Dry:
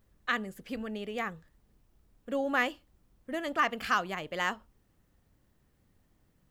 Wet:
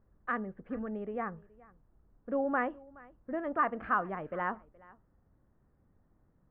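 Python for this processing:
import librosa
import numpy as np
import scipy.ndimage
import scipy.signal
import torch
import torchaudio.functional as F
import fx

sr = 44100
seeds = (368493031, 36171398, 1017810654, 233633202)

y = scipy.signal.sosfilt(scipy.signal.butter(4, 1500.0, 'lowpass', fs=sr, output='sos'), x)
y = y + 10.0 ** (-23.0 / 20.0) * np.pad(y, (int(422 * sr / 1000.0), 0))[:len(y)]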